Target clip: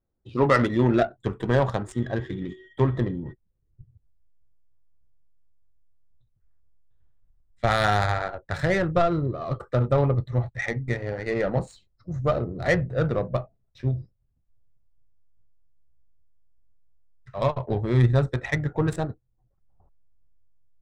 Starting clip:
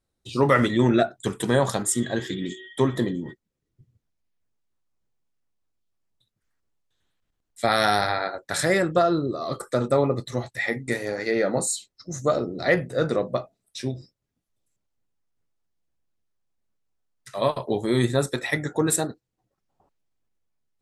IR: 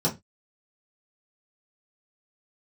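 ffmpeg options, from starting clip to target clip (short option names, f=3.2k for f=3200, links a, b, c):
-af "adynamicsmooth=sensitivity=1:basefreq=1.3k,asubboost=boost=8.5:cutoff=90"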